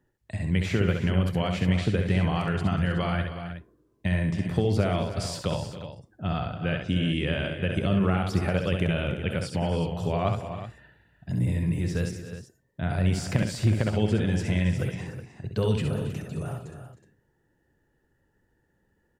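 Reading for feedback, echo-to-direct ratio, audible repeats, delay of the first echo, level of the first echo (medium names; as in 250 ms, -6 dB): no regular repeats, -3.5 dB, 5, 66 ms, -5.5 dB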